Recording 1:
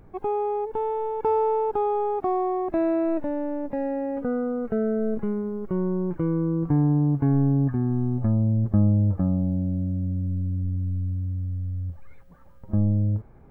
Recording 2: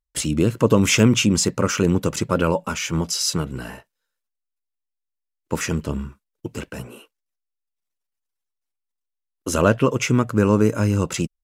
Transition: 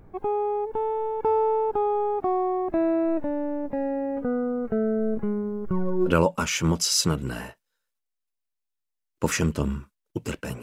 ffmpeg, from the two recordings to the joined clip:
-filter_complex "[0:a]asplit=3[s0][s1][s2];[s0]afade=t=out:st=5.66:d=0.02[s3];[s1]aphaser=in_gain=1:out_gain=1:delay=3.9:decay=0.69:speed=0.55:type=sinusoidal,afade=t=in:st=5.66:d=0.02,afade=t=out:st=6.13:d=0.02[s4];[s2]afade=t=in:st=6.13:d=0.02[s5];[s3][s4][s5]amix=inputs=3:normalize=0,apad=whole_dur=10.62,atrim=end=10.62,atrim=end=6.13,asetpts=PTS-STARTPTS[s6];[1:a]atrim=start=2.34:end=6.91,asetpts=PTS-STARTPTS[s7];[s6][s7]acrossfade=d=0.08:c1=tri:c2=tri"

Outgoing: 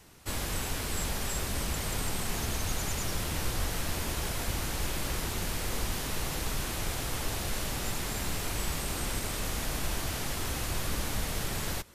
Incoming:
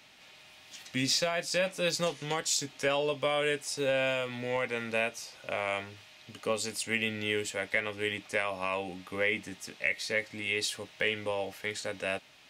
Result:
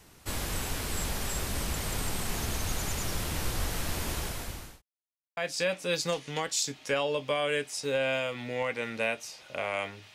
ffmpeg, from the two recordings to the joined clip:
-filter_complex "[0:a]apad=whole_dur=10.14,atrim=end=10.14,asplit=2[s0][s1];[s0]atrim=end=4.82,asetpts=PTS-STARTPTS,afade=t=out:st=4.15:d=0.67[s2];[s1]atrim=start=4.82:end=5.37,asetpts=PTS-STARTPTS,volume=0[s3];[1:a]atrim=start=1.31:end=6.08,asetpts=PTS-STARTPTS,afade=t=in:d=0.004:c=hsin[s4];[s2][s3][s4]concat=n=3:v=0:a=1"

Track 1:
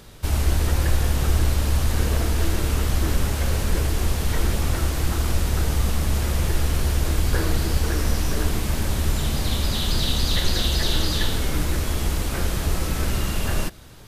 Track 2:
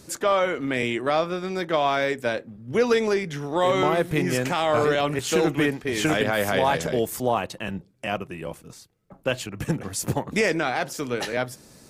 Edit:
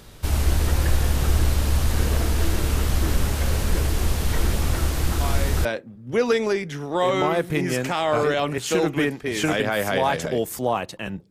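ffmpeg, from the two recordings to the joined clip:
-filter_complex "[1:a]asplit=2[s0][s1];[0:a]apad=whole_dur=11.3,atrim=end=11.3,atrim=end=5.652[s2];[s1]atrim=start=2.258:end=7.91[s3];[s0]atrim=start=1.82:end=2.26,asetpts=PTS-STARTPTS,volume=0.355,afade=t=in:d=0.004:c=hsin,afade=t=out:st=0.436:d=0.004:c=hsin,adelay=229761S[s4];[s2][s3]acrossfade=d=0.004:c1=hsin:c2=hsin[s5];[s5][s4]amix=inputs=2:normalize=0"

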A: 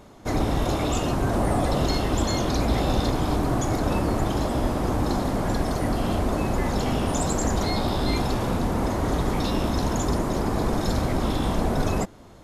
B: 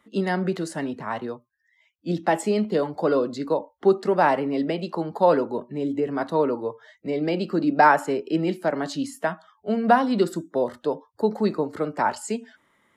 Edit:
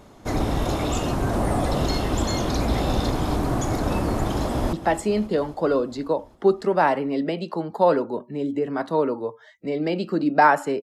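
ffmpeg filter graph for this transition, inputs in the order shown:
-filter_complex "[0:a]apad=whole_dur=10.82,atrim=end=10.82,atrim=end=4.732[s0];[1:a]atrim=start=2.138:end=8.23[s1];[s0][s1]acrossfade=d=0.004:c1=hsin:c2=hsin,asplit=2[s2][s3];[s3]afade=t=in:st=4.28:d=0.01,afade=t=out:st=4.73:d=0.01,aecho=0:1:270|540|810|1080|1350|1620|1890|2160|2430:0.188365|0.131855|0.0922988|0.0646092|0.0452264|0.0316585|0.0221609|0.0155127|0.0108589[s4];[s2][s4]amix=inputs=2:normalize=0"

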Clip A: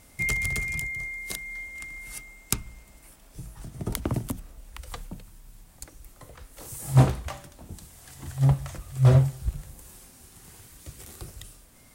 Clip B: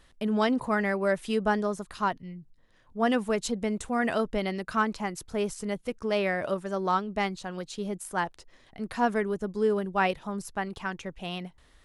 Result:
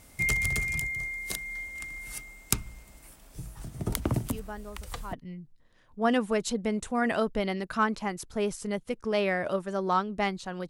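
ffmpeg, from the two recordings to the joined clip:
-filter_complex "[1:a]asplit=2[s0][s1];[0:a]apad=whole_dur=10.69,atrim=end=10.69,atrim=end=5.132[s2];[s1]atrim=start=2.108:end=7.67[s3];[s0]atrim=start=1.23:end=2.11,asetpts=PTS-STARTPTS,volume=0.178,afade=t=in:d=0.004:c=hsin,afade=t=out:st=0.876:d=0.004:c=hsin,adelay=187425S[s4];[s2][s3]acrossfade=d=0.004:c1=hsin:c2=hsin[s5];[s5][s4]amix=inputs=2:normalize=0"

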